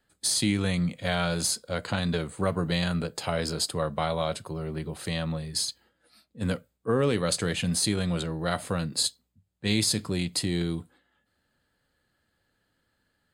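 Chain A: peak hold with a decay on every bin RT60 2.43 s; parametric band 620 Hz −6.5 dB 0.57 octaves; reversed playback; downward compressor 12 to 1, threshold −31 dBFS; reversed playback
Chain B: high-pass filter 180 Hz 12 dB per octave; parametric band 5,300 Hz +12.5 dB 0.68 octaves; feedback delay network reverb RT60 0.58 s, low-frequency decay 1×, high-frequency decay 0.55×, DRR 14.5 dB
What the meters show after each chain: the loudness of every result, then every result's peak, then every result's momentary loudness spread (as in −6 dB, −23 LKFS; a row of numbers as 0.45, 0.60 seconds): −34.0, −24.5 LKFS; −19.0, −5.0 dBFS; 4, 14 LU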